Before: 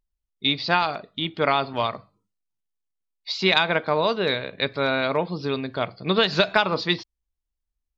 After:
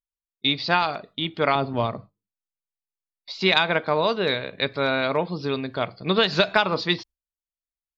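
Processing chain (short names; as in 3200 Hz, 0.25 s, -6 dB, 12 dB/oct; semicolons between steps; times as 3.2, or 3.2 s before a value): gate with hold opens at -33 dBFS; 1.55–3.41 tilt shelf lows +7.5 dB, about 700 Hz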